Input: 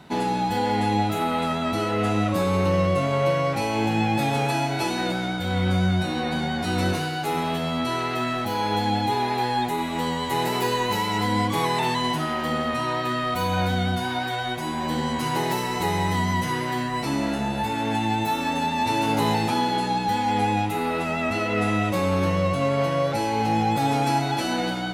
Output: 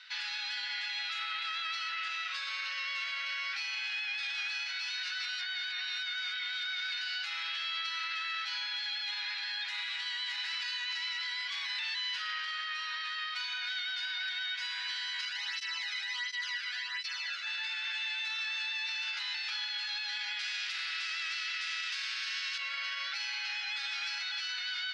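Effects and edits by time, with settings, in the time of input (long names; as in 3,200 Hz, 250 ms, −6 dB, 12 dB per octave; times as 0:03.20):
0:05.03–0:07.01: reverse
0:15.25–0:17.47: through-zero flanger with one copy inverted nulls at 1.4 Hz, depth 1.2 ms
0:20.39–0:22.58: every bin compressed towards the loudest bin 2 to 1
whole clip: Chebyshev band-pass filter 1,500–5,100 Hz, order 3; spectral tilt +2.5 dB per octave; brickwall limiter −28 dBFS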